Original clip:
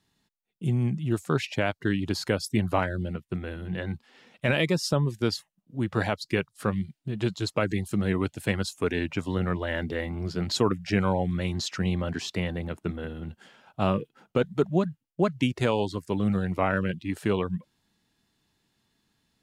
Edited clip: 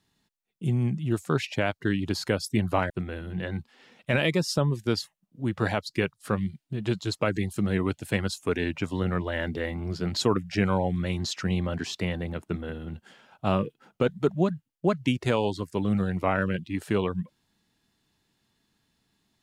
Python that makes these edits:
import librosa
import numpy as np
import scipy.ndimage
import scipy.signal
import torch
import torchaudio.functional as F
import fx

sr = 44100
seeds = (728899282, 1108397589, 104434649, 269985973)

y = fx.edit(x, sr, fx.cut(start_s=2.9, length_s=0.35), tone=tone)